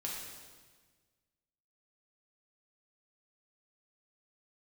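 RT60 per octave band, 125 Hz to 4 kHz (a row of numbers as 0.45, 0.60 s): 1.9, 1.7, 1.5, 1.4, 1.4, 1.4 s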